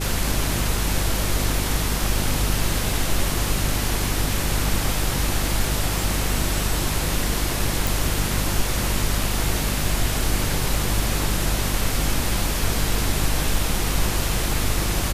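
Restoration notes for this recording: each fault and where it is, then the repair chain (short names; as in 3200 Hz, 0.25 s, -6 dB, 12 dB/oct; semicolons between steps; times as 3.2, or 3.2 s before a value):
hum 50 Hz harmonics 7 -26 dBFS
7.87 pop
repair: de-click; de-hum 50 Hz, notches 7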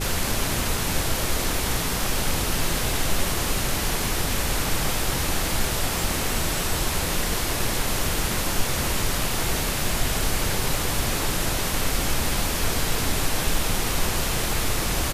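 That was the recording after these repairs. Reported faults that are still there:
none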